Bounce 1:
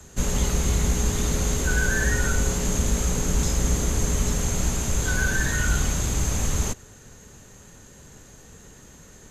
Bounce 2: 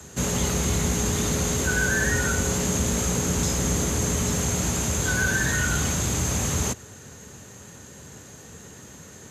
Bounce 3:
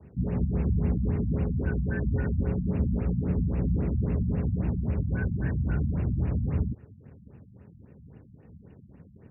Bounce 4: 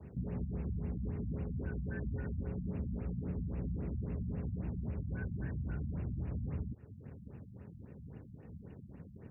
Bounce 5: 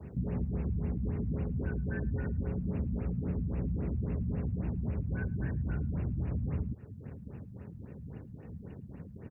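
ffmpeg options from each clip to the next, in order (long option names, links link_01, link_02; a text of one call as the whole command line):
ffmpeg -i in.wav -filter_complex "[0:a]highpass=frequency=74:width=0.5412,highpass=frequency=74:width=1.3066,asplit=2[link_01][link_02];[link_02]alimiter=limit=-23dB:level=0:latency=1,volume=-1.5dB[link_03];[link_01][link_03]amix=inputs=2:normalize=0,volume=-1dB" out.wav
ffmpeg -i in.wav -af "aeval=exprs='sgn(val(0))*max(abs(val(0))-0.00237,0)':channel_layout=same,equalizer=frequency=1500:width=0.37:gain=-14.5,afftfilt=real='re*lt(b*sr/1024,220*pow(2900/220,0.5+0.5*sin(2*PI*3.7*pts/sr)))':imag='im*lt(b*sr/1024,220*pow(2900/220,0.5+0.5*sin(2*PI*3.7*pts/sr)))':win_size=1024:overlap=0.75,volume=1.5dB" out.wav
ffmpeg -i in.wav -af "acompressor=threshold=-39dB:ratio=3" out.wav
ffmpeg -i in.wav -af "aecho=1:1:109:0.0708,volume=5dB" out.wav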